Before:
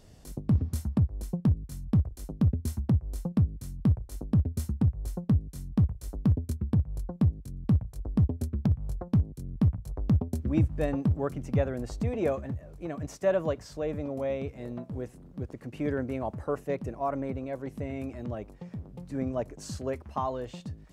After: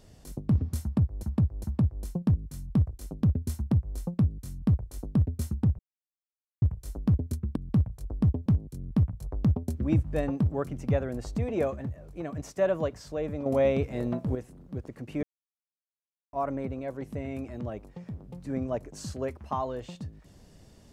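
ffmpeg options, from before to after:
ffmpeg -i in.wav -filter_complex "[0:a]asplit=11[link_01][link_02][link_03][link_04][link_05][link_06][link_07][link_08][link_09][link_10][link_11];[link_01]atrim=end=1.232[link_12];[link_02]atrim=start=0.818:end=1.232[link_13];[link_03]atrim=start=0.818:end=4.97,asetpts=PTS-STARTPTS,afade=type=out:start_time=4.148:duration=0.004:curve=hsin[link_14];[link_04]atrim=start=4.97:end=5.8,asetpts=PTS-STARTPTS,volume=0[link_15];[link_05]atrim=start=5.8:end=6.742,asetpts=PTS-STARTPTS,afade=type=in:duration=0.004:curve=hsin[link_16];[link_06]atrim=start=7.508:end=8.412[link_17];[link_07]atrim=start=9.108:end=14.112[link_18];[link_08]atrim=start=14.108:end=15.002,asetpts=PTS-STARTPTS,volume=7.5dB[link_19];[link_09]atrim=start=14.998:end=15.88,asetpts=PTS-STARTPTS,afade=type=out:start_time=0.878:duration=0.004:curve=hsin[link_20];[link_10]atrim=start=15.88:end=16.98,asetpts=PTS-STARTPTS,volume=0[link_21];[link_11]atrim=start=16.98,asetpts=PTS-STARTPTS,afade=type=in:duration=0.004:curve=hsin[link_22];[link_12][link_13]acrossfade=duration=0.004:curve1=hsin:curve2=hsin[link_23];[link_14][link_15][link_16]concat=n=3:v=0:a=1[link_24];[link_23][link_24]acrossfade=duration=0.004:curve1=hsin:curve2=hsin[link_25];[link_25][link_17]acrossfade=duration=0.004:curve1=hsin:curve2=hsin[link_26];[link_26][link_18]acrossfade=duration=0.004:curve1=hsin:curve2=hsin[link_27];[link_27][link_19]acrossfade=duration=0.004:curve1=hsin:curve2=hsin[link_28];[link_20][link_21][link_22]concat=n=3:v=0:a=1[link_29];[link_28][link_29]acrossfade=duration=0.004:curve1=hsin:curve2=hsin" out.wav

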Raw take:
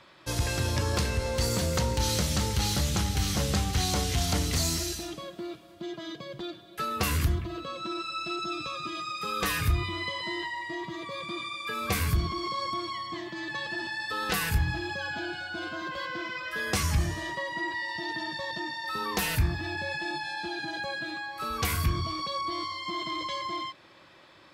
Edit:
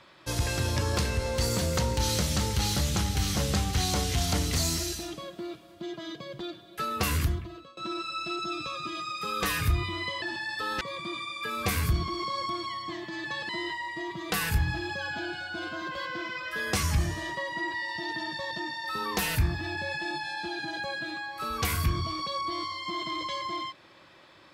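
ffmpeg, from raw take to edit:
ffmpeg -i in.wav -filter_complex "[0:a]asplit=6[link_01][link_02][link_03][link_04][link_05][link_06];[link_01]atrim=end=7.77,asetpts=PTS-STARTPTS,afade=type=out:start_time=7.18:duration=0.59:silence=0.0749894[link_07];[link_02]atrim=start=7.77:end=10.222,asetpts=PTS-STARTPTS,afade=type=in:duration=0.004:curve=hsin:silence=0.0749894[link_08];[link_03]atrim=start=13.728:end=14.322[link_09];[link_04]atrim=start=11.048:end=13.732[link_10];[link_05]atrim=start=10.218:end=11.052[link_11];[link_06]atrim=start=14.318[link_12];[link_07][link_08]concat=n=2:v=0:a=1[link_13];[link_13][link_09]acrossfade=duration=0.004:curve1=hsin:curve2=hsin[link_14];[link_14][link_10]acrossfade=duration=0.004:curve1=hsin:curve2=hsin[link_15];[link_15][link_11]acrossfade=duration=0.004:curve1=hsin:curve2=hsin[link_16];[link_16][link_12]acrossfade=duration=0.004:curve1=hsin:curve2=hsin" out.wav

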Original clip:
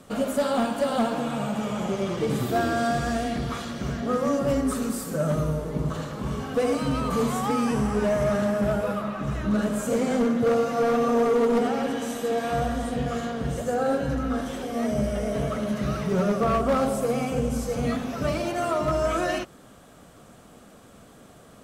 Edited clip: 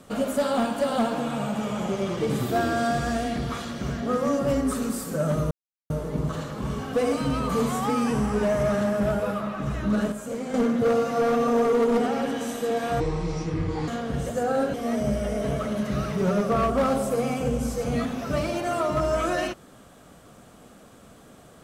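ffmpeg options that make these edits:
ffmpeg -i in.wav -filter_complex "[0:a]asplit=7[link_01][link_02][link_03][link_04][link_05][link_06][link_07];[link_01]atrim=end=5.51,asetpts=PTS-STARTPTS,afade=type=out:start_time=5.506:duration=0.004:curve=hsin,apad=pad_dur=0.39[link_08];[link_02]atrim=start=5.51:end=9.732,asetpts=PTS-STARTPTS,afade=type=in:duration=0.004:curve=hsin[link_09];[link_03]atrim=start=9.728:end=10.152,asetpts=PTS-STARTPTS,volume=-7.5dB[link_10];[link_04]atrim=start=10.148:end=12.614[link_11];[link_05]atrim=start=12.61:end=13.19,asetpts=PTS-STARTPTS,asetrate=29106,aresample=44100[link_12];[link_06]atrim=start=13.186:end=14.052[link_13];[link_07]atrim=start=14.648[link_14];[link_08][link_09]concat=n=2:v=0:a=1[link_15];[link_15][link_10]acrossfade=duration=0.004:curve1=hsin:curve2=hsin[link_16];[link_16][link_11]acrossfade=duration=0.004:curve1=hsin:curve2=hsin[link_17];[link_17][link_12]acrossfade=duration=0.004:curve1=hsin:curve2=hsin[link_18];[link_18][link_13]acrossfade=duration=0.004:curve1=hsin:curve2=hsin[link_19];[link_19][link_14]acrossfade=duration=0.004:curve1=hsin:curve2=hsin" out.wav

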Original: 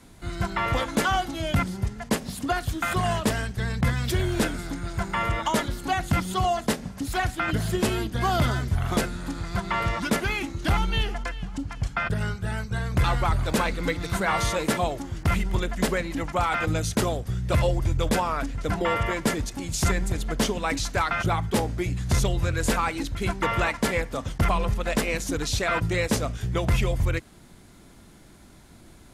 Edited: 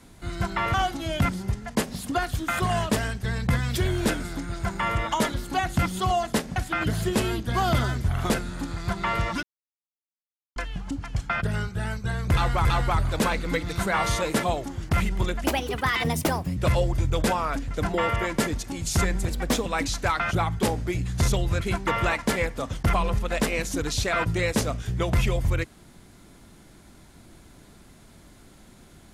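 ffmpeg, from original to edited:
ffmpeg -i in.wav -filter_complex "[0:a]asplit=11[link_01][link_02][link_03][link_04][link_05][link_06][link_07][link_08][link_09][link_10][link_11];[link_01]atrim=end=0.742[link_12];[link_02]atrim=start=1.078:end=6.902[link_13];[link_03]atrim=start=7.228:end=10.1,asetpts=PTS-STARTPTS,afade=type=out:start_time=2.868:duration=0.004:curve=hsin[link_14];[link_04]atrim=start=10.1:end=11.23,asetpts=PTS-STARTPTS,volume=0[link_15];[link_05]atrim=start=11.23:end=13.322,asetpts=PTS-STARTPTS,afade=type=in:duration=0.004:curve=hsin[link_16];[link_06]atrim=start=12.988:end=15.784[link_17];[link_07]atrim=start=15.78:end=17.44,asetpts=PTS-STARTPTS,asetrate=64827,aresample=44100[link_18];[link_08]atrim=start=17.436:end=20.154[link_19];[link_09]atrim=start=20.15:end=20.57,asetpts=PTS-STARTPTS,asetrate=48951,aresample=44100,atrim=end_sample=16686,asetpts=PTS-STARTPTS[link_20];[link_10]atrim=start=20.566:end=22.522[link_21];[link_11]atrim=start=23.158[link_22];[link_12][link_13]acrossfade=duration=0.004:curve1=hsin:curve2=hsin[link_23];[link_14][link_15][link_16]concat=n=3:v=0:a=1[link_24];[link_23][link_24]acrossfade=duration=0.004:curve1=hsin:curve2=hsin[link_25];[link_25][link_17]acrossfade=duration=0.004:curve1=hsin:curve2=hsin[link_26];[link_26][link_18]acrossfade=duration=0.004:curve1=hsin:curve2=hsin[link_27];[link_27][link_19]acrossfade=duration=0.004:curve1=hsin:curve2=hsin[link_28];[link_28][link_20]acrossfade=duration=0.004:curve1=hsin:curve2=hsin[link_29];[link_29][link_21]acrossfade=duration=0.004:curve1=hsin:curve2=hsin[link_30];[link_30][link_22]acrossfade=duration=0.004:curve1=hsin:curve2=hsin" out.wav

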